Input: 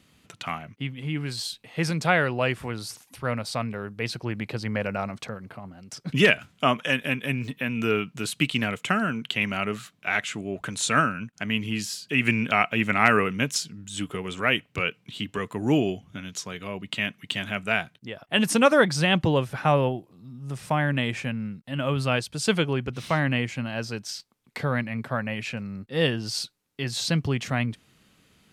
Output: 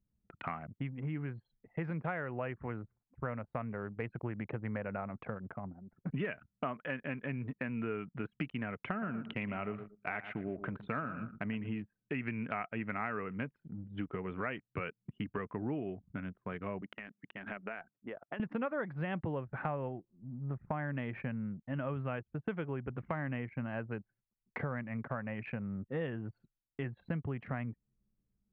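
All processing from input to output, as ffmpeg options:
ffmpeg -i in.wav -filter_complex "[0:a]asettb=1/sr,asplit=3[link_01][link_02][link_03];[link_01]atrim=end=8.884[link_04];[link_02]atrim=start=8.88:end=11.82,asetpts=PTS-STARTPTS,afade=type=in:duration=0.004:curve=qsin,afade=type=out:start_time=2.936:duration=0.004:curve=qsin,equalizer=frequency=1600:width=2.2:gain=-4,aecho=1:1:116|232|348:0.224|0.0739|0.0244,atrim=end_sample=129654[link_05];[link_03]atrim=start=11.816[link_06];[link_04][link_05]acrossfade=duration=0.004:curve1=hsin:curve2=qsin[link_07];[link_07][link_06]acrossfade=duration=0.004:curve1=qsin:curve2=hsin,asettb=1/sr,asplit=3[link_08][link_09][link_10];[link_08]atrim=end=16.824[link_11];[link_09]atrim=start=16.82:end=18.4,asetpts=PTS-STARTPTS,afade=type=in:duration=0.004:curve=qsin,afade=type=out:start_time=1.576:duration=0.004:curve=qsin,highpass=220,acompressor=threshold=-32dB:ratio=12:attack=3.2:release=140:knee=1:detection=peak[link_12];[link_10]atrim=start=18.396[link_13];[link_11][link_12]acrossfade=duration=0.004:curve1=hsin:curve2=qsin[link_14];[link_14][link_13]acrossfade=duration=0.004:curve1=qsin:curve2=hsin,lowpass=frequency=2000:width=0.5412,lowpass=frequency=2000:width=1.3066,anlmdn=0.251,acompressor=threshold=-33dB:ratio=6,volume=-1.5dB" out.wav

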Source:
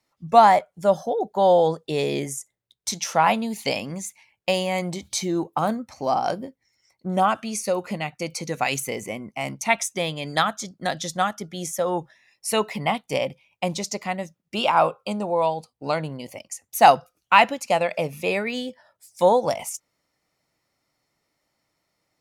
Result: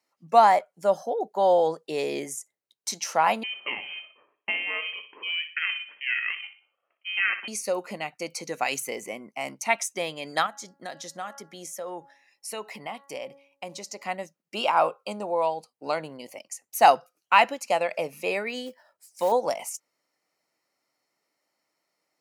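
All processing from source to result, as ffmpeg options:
ffmpeg -i in.wav -filter_complex "[0:a]asettb=1/sr,asplit=3[link_01][link_02][link_03];[link_01]atrim=end=3.434[link_04];[link_02]atrim=start=3.43:end=7.48,asetpts=PTS-STARTPTS,afade=type=in:duration=0.004:curve=qsin,afade=type=out:start_time=4.046:duration=0.004:curve=qsin,lowpass=frequency=2600:width_type=q:width=0.5098,lowpass=frequency=2600:width_type=q:width=0.6013,lowpass=frequency=2600:width_type=q:width=0.9,lowpass=frequency=2600:width_type=q:width=2.563,afreqshift=-3000,aeval=exprs='val(0)*sin(2*PI*310*n/s)':channel_layout=same,aecho=1:1:61|122|183|244:0.282|0.11|0.0429|0.0167,atrim=end_sample=178605[link_05];[link_03]atrim=start=7.476[link_06];[link_04][link_05]acrossfade=duration=0.004:curve1=hsin:curve2=qsin[link_07];[link_07][link_06]acrossfade=duration=0.004:curve1=qsin:curve2=hsin,asettb=1/sr,asplit=3[link_08][link_09][link_10];[link_08]atrim=end=10.464[link_11];[link_09]atrim=start=10.46:end=14.03,asetpts=PTS-STARTPTS,afade=type=in:duration=0.004:curve=qsin,afade=type=out:start_time=3.566:duration=0.004:curve=qsin,bandreject=frequency=278.3:width_type=h:width=4,bandreject=frequency=556.6:width_type=h:width=4,bandreject=frequency=834.9:width_type=h:width=4,bandreject=frequency=1113.2:width_type=h:width=4,bandreject=frequency=1391.5:width_type=h:width=4,bandreject=frequency=1669.8:width_type=h:width=4,bandreject=frequency=1948.1:width_type=h:width=4,acompressor=threshold=-34dB:ratio=2:attack=3.2:release=140:knee=1:detection=peak[link_12];[link_10]atrim=start=14.026[link_13];[link_11][link_12]acrossfade=duration=0.004:curve1=hsin:curve2=qsin[link_14];[link_14][link_13]acrossfade=duration=0.004:curve1=qsin:curve2=hsin,asettb=1/sr,asplit=3[link_15][link_16][link_17];[link_15]atrim=end=18.664[link_18];[link_16]atrim=start=18.66:end=19.32,asetpts=PTS-STARTPTS,afade=type=in:duration=0.004:curve=qsin,afade=type=out:start_time=0.656:duration=0.004:curve=qsin,acompressor=threshold=-22dB:ratio=1.5:attack=3.2:release=140:knee=1:detection=peak,acrusher=bits=5:mode=log:mix=0:aa=0.000001[link_19];[link_17]atrim=start=19.316[link_20];[link_18][link_19]acrossfade=duration=0.004:curve1=hsin:curve2=qsin[link_21];[link_21][link_20]acrossfade=duration=0.004:curve1=qsin:curve2=hsin,highpass=290,bandreject=frequency=3500:width=9.1,volume=-3dB" out.wav

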